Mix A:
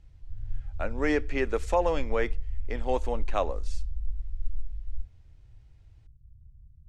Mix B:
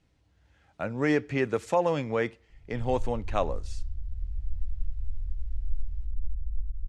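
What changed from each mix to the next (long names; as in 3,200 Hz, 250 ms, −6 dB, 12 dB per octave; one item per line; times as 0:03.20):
speech: remove high-pass filter 270 Hz 12 dB per octave
background: entry +2.50 s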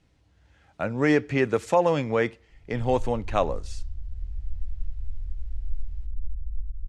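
speech +4.0 dB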